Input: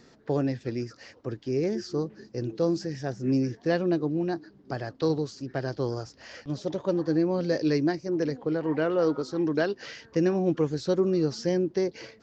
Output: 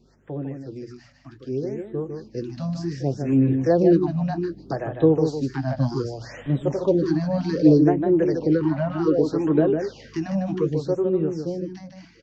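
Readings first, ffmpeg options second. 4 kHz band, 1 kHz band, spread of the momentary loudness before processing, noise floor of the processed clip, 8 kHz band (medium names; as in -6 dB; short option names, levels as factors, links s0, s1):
-3.0 dB, +4.0 dB, 11 LU, -52 dBFS, no reading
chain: -filter_complex "[0:a]bandreject=f=60:t=h:w=6,bandreject=f=120:t=h:w=6,bandreject=f=180:t=h:w=6,acrossover=split=510[s0][s1];[s0]aeval=exprs='val(0)*(1-0.7/2+0.7/2*cos(2*PI*2.6*n/s))':c=same[s2];[s1]aeval=exprs='val(0)*(1-0.7/2-0.7/2*cos(2*PI*2.6*n/s))':c=same[s3];[s2][s3]amix=inputs=2:normalize=0,acrossover=split=520|800[s4][s5][s6];[s6]acompressor=threshold=0.00282:ratio=6[s7];[s4][s5][s7]amix=inputs=3:normalize=0,flanger=delay=5.2:depth=3.4:regen=-45:speed=0.24:shape=triangular,aeval=exprs='val(0)+0.000708*(sin(2*PI*50*n/s)+sin(2*PI*2*50*n/s)/2+sin(2*PI*3*50*n/s)/3+sin(2*PI*4*50*n/s)/4+sin(2*PI*5*50*n/s)/5)':c=same,dynaudnorm=f=740:g=7:m=4.47,asplit=2[s8][s9];[s9]aecho=0:1:152:0.501[s10];[s8][s10]amix=inputs=2:normalize=0,afftfilt=real='re*(1-between(b*sr/1024,370*pow(5700/370,0.5+0.5*sin(2*PI*0.65*pts/sr))/1.41,370*pow(5700/370,0.5+0.5*sin(2*PI*0.65*pts/sr))*1.41))':imag='im*(1-between(b*sr/1024,370*pow(5700/370,0.5+0.5*sin(2*PI*0.65*pts/sr))/1.41,370*pow(5700/370,0.5+0.5*sin(2*PI*0.65*pts/sr))*1.41))':win_size=1024:overlap=0.75,volume=1.26"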